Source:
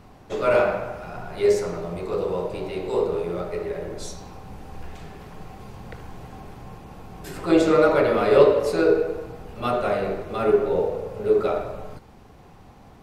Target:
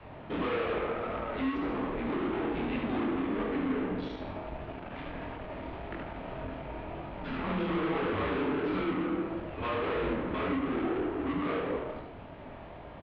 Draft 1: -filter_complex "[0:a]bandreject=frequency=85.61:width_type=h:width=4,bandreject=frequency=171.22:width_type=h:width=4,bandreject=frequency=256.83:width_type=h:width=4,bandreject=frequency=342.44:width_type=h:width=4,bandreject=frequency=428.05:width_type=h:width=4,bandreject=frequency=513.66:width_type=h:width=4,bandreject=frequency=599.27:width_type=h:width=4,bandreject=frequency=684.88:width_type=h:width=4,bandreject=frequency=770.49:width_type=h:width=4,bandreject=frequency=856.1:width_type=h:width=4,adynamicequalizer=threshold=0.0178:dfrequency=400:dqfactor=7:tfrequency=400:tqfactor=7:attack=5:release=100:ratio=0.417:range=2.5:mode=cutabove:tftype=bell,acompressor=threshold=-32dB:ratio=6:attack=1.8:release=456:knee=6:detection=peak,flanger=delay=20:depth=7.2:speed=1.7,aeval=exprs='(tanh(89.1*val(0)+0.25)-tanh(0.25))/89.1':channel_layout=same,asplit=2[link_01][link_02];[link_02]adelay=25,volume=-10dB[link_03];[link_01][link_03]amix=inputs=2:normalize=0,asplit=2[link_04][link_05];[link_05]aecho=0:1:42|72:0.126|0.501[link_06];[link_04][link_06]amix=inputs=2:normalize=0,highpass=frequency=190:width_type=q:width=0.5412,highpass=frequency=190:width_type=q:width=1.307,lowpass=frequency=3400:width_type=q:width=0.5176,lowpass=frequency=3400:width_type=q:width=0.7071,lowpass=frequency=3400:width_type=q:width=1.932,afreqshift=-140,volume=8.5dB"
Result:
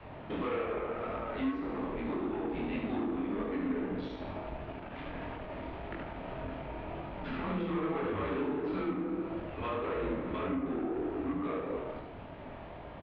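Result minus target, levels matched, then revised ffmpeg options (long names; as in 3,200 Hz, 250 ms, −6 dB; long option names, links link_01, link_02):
downward compressor: peak gain reduction +10 dB
-filter_complex "[0:a]bandreject=frequency=85.61:width_type=h:width=4,bandreject=frequency=171.22:width_type=h:width=4,bandreject=frequency=256.83:width_type=h:width=4,bandreject=frequency=342.44:width_type=h:width=4,bandreject=frequency=428.05:width_type=h:width=4,bandreject=frequency=513.66:width_type=h:width=4,bandreject=frequency=599.27:width_type=h:width=4,bandreject=frequency=684.88:width_type=h:width=4,bandreject=frequency=770.49:width_type=h:width=4,bandreject=frequency=856.1:width_type=h:width=4,adynamicequalizer=threshold=0.0178:dfrequency=400:dqfactor=7:tfrequency=400:tqfactor=7:attack=5:release=100:ratio=0.417:range=2.5:mode=cutabove:tftype=bell,acompressor=threshold=-20dB:ratio=6:attack=1.8:release=456:knee=6:detection=peak,flanger=delay=20:depth=7.2:speed=1.7,aeval=exprs='(tanh(89.1*val(0)+0.25)-tanh(0.25))/89.1':channel_layout=same,asplit=2[link_01][link_02];[link_02]adelay=25,volume=-10dB[link_03];[link_01][link_03]amix=inputs=2:normalize=0,asplit=2[link_04][link_05];[link_05]aecho=0:1:42|72:0.126|0.501[link_06];[link_04][link_06]amix=inputs=2:normalize=0,highpass=frequency=190:width_type=q:width=0.5412,highpass=frequency=190:width_type=q:width=1.307,lowpass=frequency=3400:width_type=q:width=0.5176,lowpass=frequency=3400:width_type=q:width=0.7071,lowpass=frequency=3400:width_type=q:width=1.932,afreqshift=-140,volume=8.5dB"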